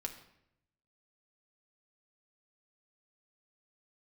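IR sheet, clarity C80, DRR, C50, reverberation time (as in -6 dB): 12.5 dB, 3.0 dB, 10.0 dB, 0.75 s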